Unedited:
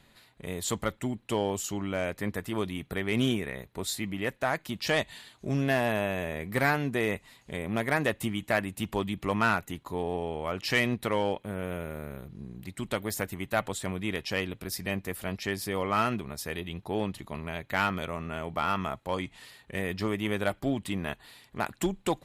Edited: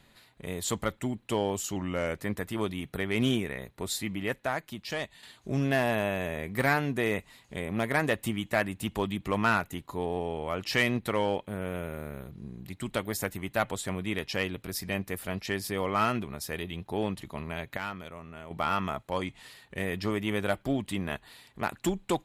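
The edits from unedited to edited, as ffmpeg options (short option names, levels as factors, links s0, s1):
-filter_complex "[0:a]asplit=6[s0][s1][s2][s3][s4][s5];[s0]atrim=end=1.764[s6];[s1]atrim=start=1.76:end=2.15,asetpts=PTS-STARTPTS,asetrate=41013,aresample=44100[s7];[s2]atrim=start=2.146:end=5.2,asetpts=PTS-STARTPTS,afade=t=out:st=2.114:d=0.94:c=qua:silence=0.398107[s8];[s3]atrim=start=5.2:end=17.742,asetpts=PTS-STARTPTS,afade=t=in:d=0.004:c=hsin:silence=0.398107[s9];[s4]atrim=start=17.738:end=18.482,asetpts=PTS-STARTPTS,volume=0.355[s10];[s5]atrim=start=18.478[s11];[s6][s7]acrossfade=d=0.004:c1=hsin:c2=hsin[s12];[s8][s9]concat=n=2:v=0:a=1[s13];[s12][s13]acrossfade=d=0.004:c1=hsin:c2=hsin[s14];[s14][s10]acrossfade=d=0.004:c1=hsin:c2=hsin[s15];[s15][s11]acrossfade=d=0.004:c1=hsin:c2=hsin"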